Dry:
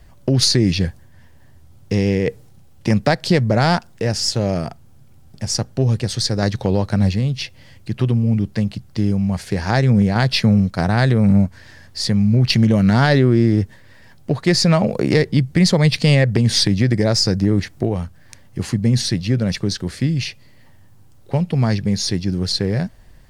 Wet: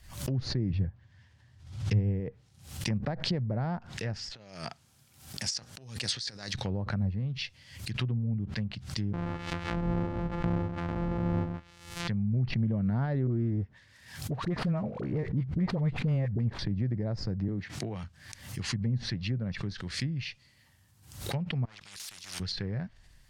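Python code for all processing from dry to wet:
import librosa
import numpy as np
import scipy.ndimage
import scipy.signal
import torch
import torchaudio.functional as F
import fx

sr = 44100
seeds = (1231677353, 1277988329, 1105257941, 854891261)

y = fx.chain(x, sr, fx.lowpass(hz=5100.0, slope=12),
    fx.peak_eq(hz=110.0, db=12.0, octaves=0.3), at=(0.7, 2.2))
y = fx.chain(y, sr, fx.over_compress(threshold_db=-25.0, ratio=-0.5),
    fx.highpass(hz=300.0, slope=6), at=(4.29, 6.55))
y = fx.chain(y, sr, fx.sample_sort(block=256),
    fx.echo_single(ms=130, db=-7.5), at=(9.13, 12.08))
y = fx.chain(y, sr, fx.dead_time(dead_ms=0.1),
    fx.dispersion(late='highs', ms=43.0, hz=840.0), at=(13.27, 16.59))
y = fx.chain(y, sr, fx.highpass(hz=120.0, slope=12),
    fx.high_shelf(hz=3600.0, db=6.5),
    fx.band_squash(depth_pct=40), at=(17.48, 18.04))
y = fx.chain(y, sr, fx.level_steps(step_db=12),
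    fx.overload_stage(gain_db=22.5),
    fx.spectral_comp(ratio=4.0), at=(21.65, 22.4))
y = fx.env_lowpass_down(y, sr, base_hz=690.0, full_db=-13.0)
y = fx.tone_stack(y, sr, knobs='5-5-5')
y = fx.pre_swell(y, sr, db_per_s=92.0)
y = y * librosa.db_to_amplitude(2.0)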